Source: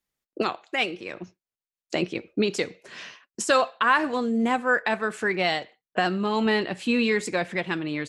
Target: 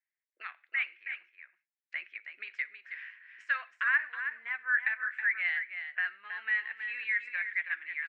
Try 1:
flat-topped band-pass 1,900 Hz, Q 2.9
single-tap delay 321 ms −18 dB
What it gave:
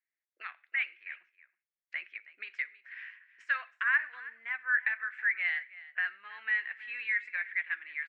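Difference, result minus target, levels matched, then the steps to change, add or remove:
echo-to-direct −9.5 dB
change: single-tap delay 321 ms −8.5 dB

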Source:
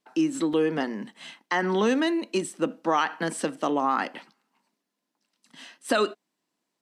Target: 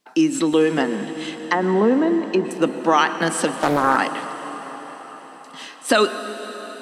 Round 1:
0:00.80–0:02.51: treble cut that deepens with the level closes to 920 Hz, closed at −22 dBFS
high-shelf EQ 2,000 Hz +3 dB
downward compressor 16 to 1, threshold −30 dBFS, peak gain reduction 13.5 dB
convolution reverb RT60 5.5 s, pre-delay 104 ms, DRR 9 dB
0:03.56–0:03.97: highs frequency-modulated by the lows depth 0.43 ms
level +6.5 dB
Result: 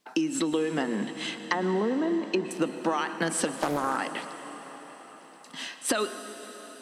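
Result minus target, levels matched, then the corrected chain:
downward compressor: peak gain reduction +13.5 dB
0:00.80–0:02.51: treble cut that deepens with the level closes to 920 Hz, closed at −22 dBFS
high-shelf EQ 2,000 Hz +3 dB
convolution reverb RT60 5.5 s, pre-delay 104 ms, DRR 9 dB
0:03.56–0:03.97: highs frequency-modulated by the lows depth 0.43 ms
level +6.5 dB

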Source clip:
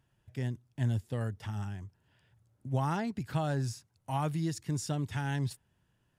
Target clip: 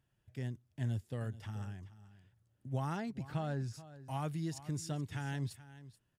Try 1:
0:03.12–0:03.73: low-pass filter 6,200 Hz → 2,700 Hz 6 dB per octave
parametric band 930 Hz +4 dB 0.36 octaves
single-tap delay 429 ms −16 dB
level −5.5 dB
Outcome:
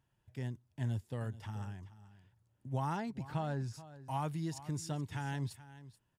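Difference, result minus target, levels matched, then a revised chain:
1,000 Hz band +3.0 dB
0:03.12–0:03.73: low-pass filter 6,200 Hz → 2,700 Hz 6 dB per octave
parametric band 930 Hz −3.5 dB 0.36 octaves
single-tap delay 429 ms −16 dB
level −5.5 dB

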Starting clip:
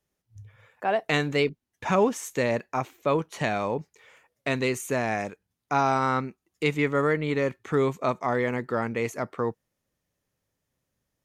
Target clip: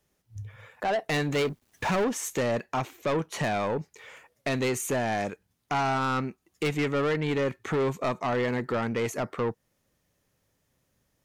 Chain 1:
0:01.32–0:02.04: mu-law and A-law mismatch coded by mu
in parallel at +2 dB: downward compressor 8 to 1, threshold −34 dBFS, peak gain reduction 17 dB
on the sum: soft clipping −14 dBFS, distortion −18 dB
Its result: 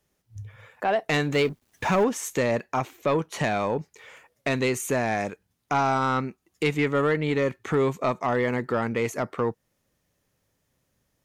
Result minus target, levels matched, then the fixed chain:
soft clipping: distortion −8 dB
0:01.32–0:02.04: mu-law and A-law mismatch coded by mu
in parallel at +2 dB: downward compressor 8 to 1, threshold −34 dBFS, peak gain reduction 17 dB
on the sum: soft clipping −22 dBFS, distortion −10 dB

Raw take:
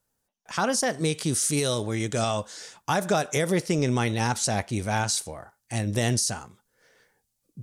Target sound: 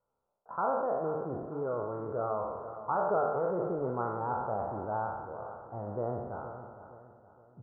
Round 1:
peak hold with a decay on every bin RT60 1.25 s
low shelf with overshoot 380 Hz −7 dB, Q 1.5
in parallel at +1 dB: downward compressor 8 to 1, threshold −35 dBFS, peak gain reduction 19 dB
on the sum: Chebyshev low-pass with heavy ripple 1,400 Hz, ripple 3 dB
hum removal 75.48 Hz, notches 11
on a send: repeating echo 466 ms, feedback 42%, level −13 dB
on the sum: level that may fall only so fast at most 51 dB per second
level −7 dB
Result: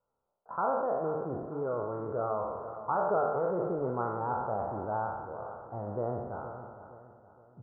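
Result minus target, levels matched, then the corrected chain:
downward compressor: peak gain reduction −5 dB
peak hold with a decay on every bin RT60 1.25 s
low shelf with overshoot 380 Hz −7 dB, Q 1.5
in parallel at +1 dB: downward compressor 8 to 1, threshold −41 dBFS, peak gain reduction 24 dB
on the sum: Chebyshev low-pass with heavy ripple 1,400 Hz, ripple 3 dB
hum removal 75.48 Hz, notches 11
on a send: repeating echo 466 ms, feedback 42%, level −13 dB
on the sum: level that may fall only so fast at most 51 dB per second
level −7 dB

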